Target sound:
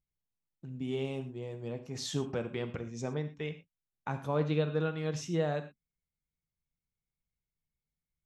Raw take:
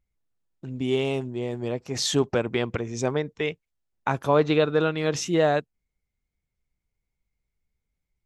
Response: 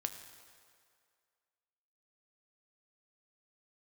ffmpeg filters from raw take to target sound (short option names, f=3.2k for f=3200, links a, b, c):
-filter_complex "[0:a]equalizer=f=150:t=o:w=1.7:g=6[a];[1:a]atrim=start_sample=2205,afade=t=out:st=0.25:d=0.01,atrim=end_sample=11466,asetrate=70560,aresample=44100[b];[a][b]afir=irnorm=-1:irlink=0,volume=-8dB"